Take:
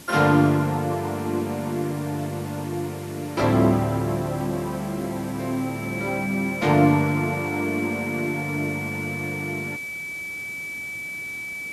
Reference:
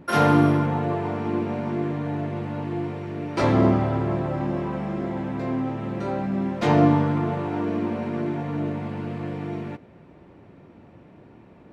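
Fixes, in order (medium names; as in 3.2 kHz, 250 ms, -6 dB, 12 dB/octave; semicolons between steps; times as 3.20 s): band-stop 2.3 kHz, Q 30; noise print and reduce 16 dB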